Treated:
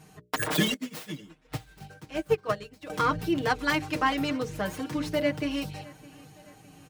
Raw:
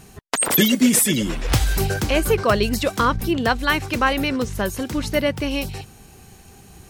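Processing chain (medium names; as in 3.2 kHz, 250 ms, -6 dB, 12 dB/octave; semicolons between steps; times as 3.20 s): tracing distortion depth 0.25 ms; high-pass 74 Hz 12 dB/octave; treble shelf 4.7 kHz -6 dB; hum notches 60/120/180/240/300/360/420/480/540/600 Hz; comb 6.5 ms, depth 84%; feedback delay 612 ms, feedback 53%, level -22 dB; 0.74–2.90 s: upward expansion 2.5:1, over -28 dBFS; trim -8 dB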